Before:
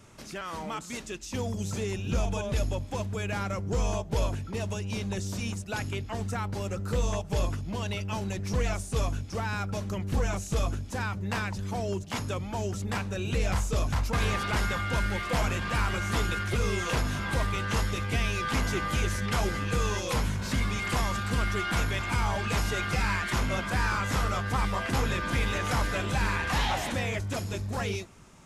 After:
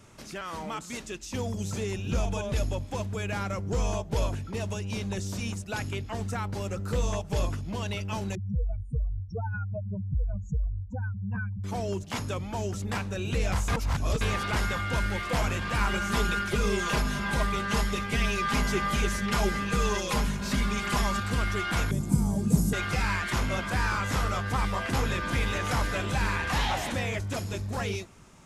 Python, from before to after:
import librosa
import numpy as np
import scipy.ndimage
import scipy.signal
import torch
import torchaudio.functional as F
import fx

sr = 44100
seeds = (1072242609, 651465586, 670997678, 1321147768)

y = fx.spec_expand(x, sr, power=3.7, at=(8.35, 11.64))
y = fx.comb(y, sr, ms=4.9, depth=0.65, at=(15.8, 21.2))
y = fx.curve_eq(y, sr, hz=(110.0, 160.0, 1600.0, 2800.0, 5400.0, 8200.0), db=(0, 15, -21, -22, -6, 6), at=(21.91, 22.73))
y = fx.edit(y, sr, fx.reverse_span(start_s=13.68, length_s=0.53), tone=tone)